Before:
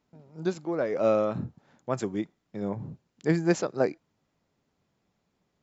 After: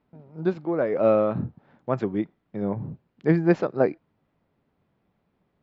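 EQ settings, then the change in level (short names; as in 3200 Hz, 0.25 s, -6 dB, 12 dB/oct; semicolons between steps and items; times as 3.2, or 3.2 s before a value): air absorption 350 m; +5.0 dB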